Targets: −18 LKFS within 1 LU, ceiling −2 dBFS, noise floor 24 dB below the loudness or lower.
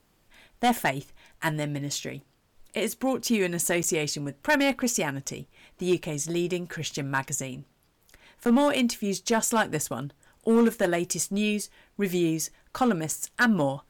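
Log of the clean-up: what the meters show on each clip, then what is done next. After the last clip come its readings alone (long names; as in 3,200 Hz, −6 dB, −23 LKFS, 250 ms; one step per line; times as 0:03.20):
share of clipped samples 0.7%; peaks flattened at −15.5 dBFS; number of dropouts 2; longest dropout 9.2 ms; integrated loudness −27.0 LKFS; sample peak −15.5 dBFS; target loudness −18.0 LKFS
→ clipped peaks rebuilt −15.5 dBFS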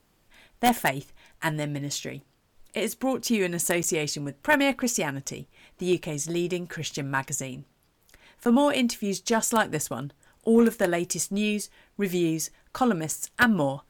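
share of clipped samples 0.0%; number of dropouts 2; longest dropout 9.2 ms
→ repair the gap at 0:03.83/0:08.45, 9.2 ms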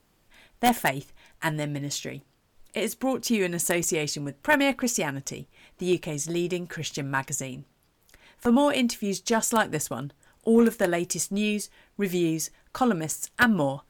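number of dropouts 0; integrated loudness −26.5 LKFS; sample peak −6.5 dBFS; target loudness −18.0 LKFS
→ level +8.5 dB
brickwall limiter −2 dBFS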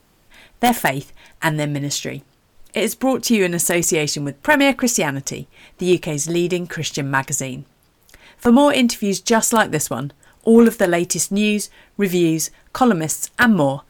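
integrated loudness −18.0 LKFS; sample peak −2.0 dBFS; background noise floor −57 dBFS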